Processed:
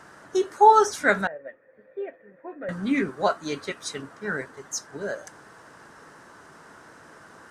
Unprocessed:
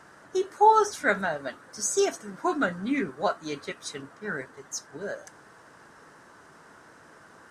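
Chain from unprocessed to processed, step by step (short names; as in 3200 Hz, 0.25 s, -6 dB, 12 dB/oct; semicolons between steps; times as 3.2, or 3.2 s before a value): 1.27–2.69 vocal tract filter e; gain +3.5 dB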